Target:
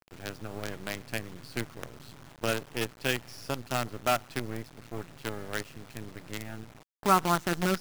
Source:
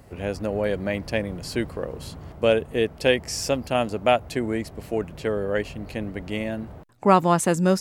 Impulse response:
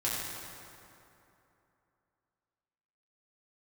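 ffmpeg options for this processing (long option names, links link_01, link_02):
-filter_complex "[0:a]highpass=frequency=110:width=0.5412,highpass=frequency=110:width=1.3066,equalizer=frequency=120:width_type=q:width=4:gain=8,equalizer=frequency=200:width_type=q:width=4:gain=-3,equalizer=frequency=520:width_type=q:width=4:gain=-9,equalizer=frequency=1400:width_type=q:width=4:gain=8,lowpass=frequency=4900:width=0.5412,lowpass=frequency=4900:width=1.3066,asplit=2[link_01][link_02];[1:a]atrim=start_sample=2205,afade=type=out:start_time=0.3:duration=0.01,atrim=end_sample=13671[link_03];[link_02][link_03]afir=irnorm=-1:irlink=0,volume=-29dB[link_04];[link_01][link_04]amix=inputs=2:normalize=0,acrusher=bits=4:dc=4:mix=0:aa=0.000001,volume=-7.5dB"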